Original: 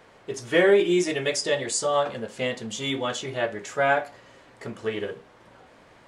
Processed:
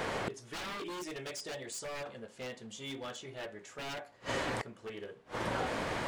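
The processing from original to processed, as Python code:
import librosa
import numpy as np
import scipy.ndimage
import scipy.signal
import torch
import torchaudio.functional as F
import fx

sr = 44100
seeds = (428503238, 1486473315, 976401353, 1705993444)

y = 10.0 ** (-22.0 / 20.0) * (np.abs((x / 10.0 ** (-22.0 / 20.0) + 3.0) % 4.0 - 2.0) - 1.0)
y = fx.gate_flip(y, sr, shuts_db=-39.0, range_db=-31)
y = y * librosa.db_to_amplitude(17.5)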